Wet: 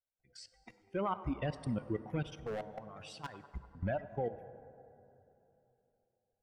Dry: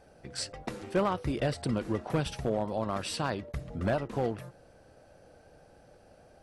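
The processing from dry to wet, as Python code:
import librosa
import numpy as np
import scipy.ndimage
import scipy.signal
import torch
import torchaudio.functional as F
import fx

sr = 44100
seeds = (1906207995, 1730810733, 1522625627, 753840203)

y = fx.bin_expand(x, sr, power=2.0)
y = scipy.signal.sosfilt(scipy.signal.butter(2, 6200.0, 'lowpass', fs=sr, output='sos'), y)
y = fx.notch(y, sr, hz=4100.0, q=10.0)
y = fx.level_steps(y, sr, step_db=18)
y = fx.echo_banded(y, sr, ms=98, feedback_pct=79, hz=910.0, wet_db=-18)
y = fx.clip_hard(y, sr, threshold_db=-38.5, at=(2.4, 3.71))
y = fx.rev_plate(y, sr, seeds[0], rt60_s=3.3, hf_ratio=0.45, predelay_ms=0, drr_db=14.0)
y = F.gain(torch.from_numpy(y), 2.5).numpy()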